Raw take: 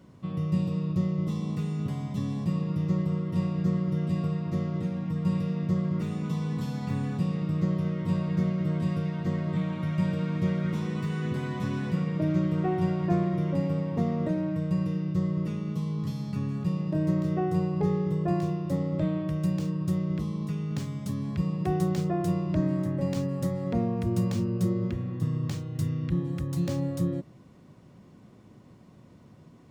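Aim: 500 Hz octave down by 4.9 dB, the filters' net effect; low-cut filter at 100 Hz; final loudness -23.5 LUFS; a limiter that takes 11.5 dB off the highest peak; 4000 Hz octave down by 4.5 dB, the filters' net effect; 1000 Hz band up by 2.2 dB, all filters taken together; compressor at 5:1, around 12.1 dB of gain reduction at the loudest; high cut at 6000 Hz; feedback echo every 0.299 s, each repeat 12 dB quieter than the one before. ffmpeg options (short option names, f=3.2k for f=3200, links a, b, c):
-af "highpass=100,lowpass=6k,equalizer=f=500:t=o:g=-9,equalizer=f=1k:t=o:g=7,equalizer=f=4k:t=o:g=-5.5,acompressor=threshold=-37dB:ratio=5,alimiter=level_in=14.5dB:limit=-24dB:level=0:latency=1,volume=-14.5dB,aecho=1:1:299|598|897:0.251|0.0628|0.0157,volume=22.5dB"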